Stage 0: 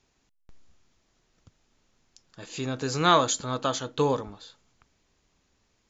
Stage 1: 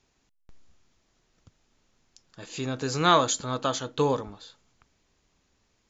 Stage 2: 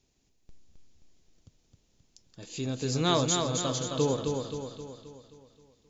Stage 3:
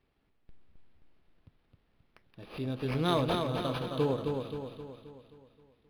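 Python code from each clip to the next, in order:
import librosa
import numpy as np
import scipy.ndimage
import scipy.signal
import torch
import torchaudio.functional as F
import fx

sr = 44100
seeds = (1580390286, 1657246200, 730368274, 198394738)

y1 = x
y2 = fx.peak_eq(y1, sr, hz=1300.0, db=-12.0, octaves=1.8)
y2 = fx.echo_feedback(y2, sr, ms=264, feedback_pct=51, wet_db=-4.5)
y3 = np.interp(np.arange(len(y2)), np.arange(len(y2))[::6], y2[::6])
y3 = F.gain(torch.from_numpy(y3), -2.0).numpy()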